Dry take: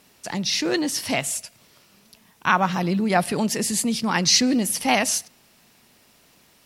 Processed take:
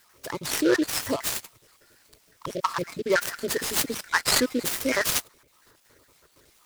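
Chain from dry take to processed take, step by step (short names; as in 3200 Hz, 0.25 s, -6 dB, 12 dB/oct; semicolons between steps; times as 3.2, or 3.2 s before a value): random spectral dropouts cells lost 59%; fixed phaser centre 760 Hz, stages 6; noise-modulated delay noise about 3200 Hz, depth 0.036 ms; gain +5.5 dB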